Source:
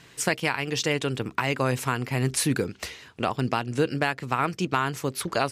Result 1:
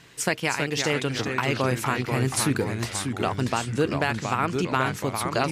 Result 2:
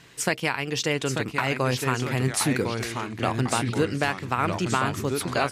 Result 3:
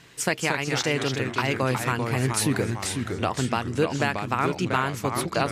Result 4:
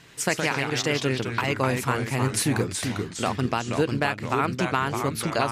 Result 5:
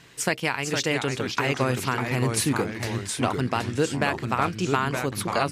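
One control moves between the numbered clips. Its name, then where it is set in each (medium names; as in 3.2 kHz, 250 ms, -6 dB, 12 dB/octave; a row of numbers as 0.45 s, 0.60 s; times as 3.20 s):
ever faster or slower copies, time: 290 ms, 857 ms, 196 ms, 84 ms, 428 ms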